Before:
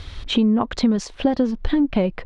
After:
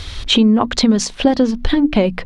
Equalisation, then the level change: high shelf 3500 Hz +10 dB; notches 60/120/180/240/300 Hz; +5.5 dB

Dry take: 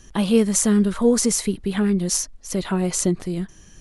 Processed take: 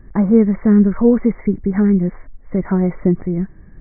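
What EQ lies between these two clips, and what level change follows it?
brick-wall FIR low-pass 2300 Hz; low shelf 470 Hz +9 dB; -1.0 dB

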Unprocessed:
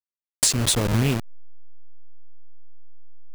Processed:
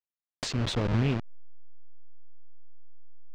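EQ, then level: air absorption 190 m; -4.5 dB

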